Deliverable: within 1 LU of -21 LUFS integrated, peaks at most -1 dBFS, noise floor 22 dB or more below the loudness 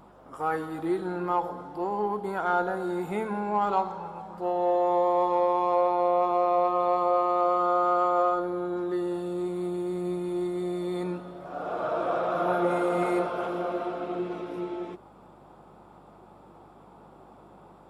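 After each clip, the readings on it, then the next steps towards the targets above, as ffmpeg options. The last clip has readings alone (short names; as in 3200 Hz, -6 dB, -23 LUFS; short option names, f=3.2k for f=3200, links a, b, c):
hum 50 Hz; harmonics up to 250 Hz; hum level -60 dBFS; loudness -27.5 LUFS; peak -13.0 dBFS; loudness target -21.0 LUFS
-> -af "bandreject=f=50:t=h:w=4,bandreject=f=100:t=h:w=4,bandreject=f=150:t=h:w=4,bandreject=f=200:t=h:w=4,bandreject=f=250:t=h:w=4"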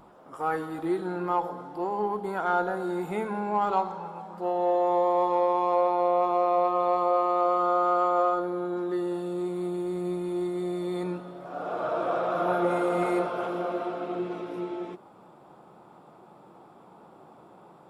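hum none; loudness -27.5 LUFS; peak -13.0 dBFS; loudness target -21.0 LUFS
-> -af "volume=6.5dB"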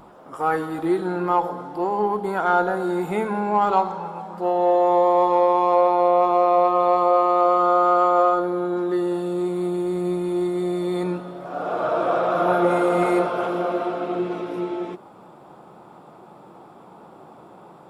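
loudness -21.0 LUFS; peak -6.5 dBFS; noise floor -47 dBFS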